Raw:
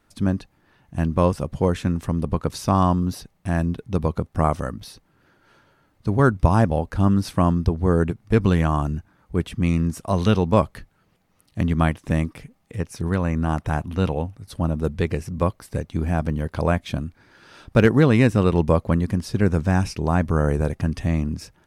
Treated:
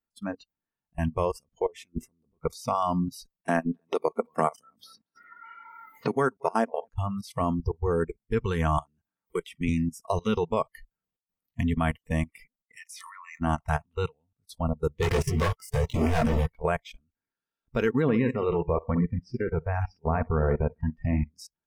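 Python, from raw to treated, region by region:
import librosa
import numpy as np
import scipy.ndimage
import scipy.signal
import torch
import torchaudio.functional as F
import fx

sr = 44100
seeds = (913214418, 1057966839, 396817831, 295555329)

y = fx.chain(x, sr, fx.peak_eq(hz=360.0, db=11.0, octaves=0.71),
    fx.over_compress(threshold_db=-25.0, ratio=-1.0), at=(1.66, 2.38))
y = fx.chain(y, sr, fx.highpass(hz=200.0, slope=12),
    fx.echo_single(ms=229, db=-16.5),
    fx.band_squash(depth_pct=100), at=(3.48, 6.89))
y = fx.chain(y, sr, fx.low_shelf(hz=120.0, db=-7.5),
    fx.band_squash(depth_pct=70), at=(8.78, 9.69))
y = fx.chain(y, sr, fx.highpass(hz=1000.0, slope=24),
    fx.env_flatten(amount_pct=50), at=(12.76, 13.4))
y = fx.chain(y, sr, fx.leveller(passes=5),
    fx.detune_double(cents=31), at=(15.02, 16.46))
y = fx.chain(y, sr, fx.lowpass(hz=1900.0, slope=6),
    fx.echo_feedback(ms=64, feedback_pct=39, wet_db=-9.5), at=(18.02, 21.33))
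y = fx.level_steps(y, sr, step_db=22)
y = y + 0.33 * np.pad(y, (int(4.4 * sr / 1000.0), 0))[:len(y)]
y = fx.noise_reduce_blind(y, sr, reduce_db=28)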